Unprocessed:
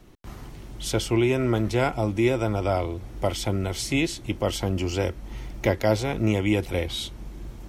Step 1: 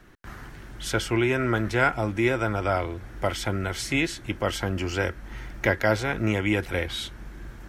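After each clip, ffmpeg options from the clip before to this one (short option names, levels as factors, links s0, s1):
-af "equalizer=f=1600:t=o:w=0.72:g=14.5,volume=0.75"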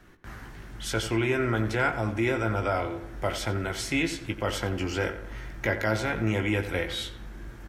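-filter_complex "[0:a]asplit=2[s0][s1];[s1]adelay=18,volume=0.398[s2];[s0][s2]amix=inputs=2:normalize=0,asplit=2[s3][s4];[s4]alimiter=limit=0.158:level=0:latency=1:release=21,volume=1.19[s5];[s3][s5]amix=inputs=2:normalize=0,asplit=2[s6][s7];[s7]adelay=89,lowpass=f=2600:p=1,volume=0.299,asplit=2[s8][s9];[s9]adelay=89,lowpass=f=2600:p=1,volume=0.49,asplit=2[s10][s11];[s11]adelay=89,lowpass=f=2600:p=1,volume=0.49,asplit=2[s12][s13];[s13]adelay=89,lowpass=f=2600:p=1,volume=0.49,asplit=2[s14][s15];[s15]adelay=89,lowpass=f=2600:p=1,volume=0.49[s16];[s6][s8][s10][s12][s14][s16]amix=inputs=6:normalize=0,volume=0.355"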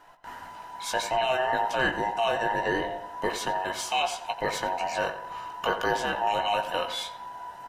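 -af "afftfilt=real='real(if(between(b,1,1008),(2*floor((b-1)/48)+1)*48-b,b),0)':imag='imag(if(between(b,1,1008),(2*floor((b-1)/48)+1)*48-b,b),0)*if(between(b,1,1008),-1,1)':win_size=2048:overlap=0.75"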